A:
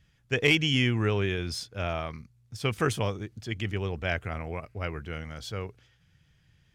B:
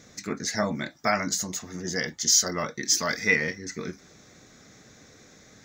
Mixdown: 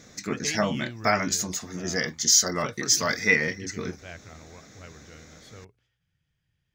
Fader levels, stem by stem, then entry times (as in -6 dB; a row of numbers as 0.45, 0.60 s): -13.0, +1.5 dB; 0.00, 0.00 s